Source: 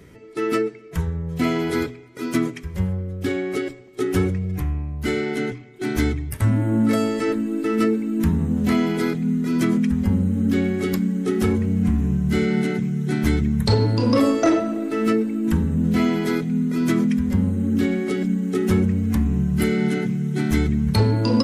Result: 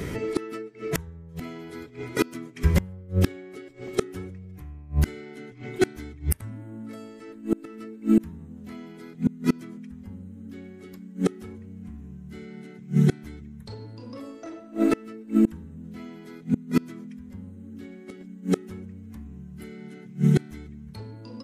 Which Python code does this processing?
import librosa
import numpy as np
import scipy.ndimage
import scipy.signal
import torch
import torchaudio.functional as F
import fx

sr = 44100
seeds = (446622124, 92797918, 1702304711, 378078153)

y = fx.rider(x, sr, range_db=10, speed_s=2.0)
y = fx.gate_flip(y, sr, shuts_db=-16.0, range_db=-28)
y = F.gain(torch.from_numpy(y), 7.5).numpy()